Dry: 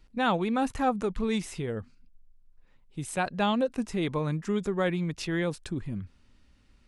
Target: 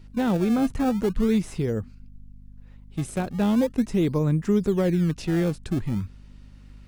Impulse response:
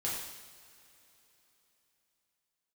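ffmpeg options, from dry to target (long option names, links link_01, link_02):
-filter_complex "[0:a]acrossover=split=490[link_01][link_02];[link_02]acompressor=threshold=-51dB:ratio=2[link_03];[link_01][link_03]amix=inputs=2:normalize=0,asplit=2[link_04][link_05];[link_05]acrusher=samples=26:mix=1:aa=0.000001:lfo=1:lforange=41.6:lforate=0.4,volume=-11dB[link_06];[link_04][link_06]amix=inputs=2:normalize=0,aeval=exprs='val(0)+0.00251*(sin(2*PI*50*n/s)+sin(2*PI*2*50*n/s)/2+sin(2*PI*3*50*n/s)/3+sin(2*PI*4*50*n/s)/4+sin(2*PI*5*50*n/s)/5)':channel_layout=same,volume=6dB"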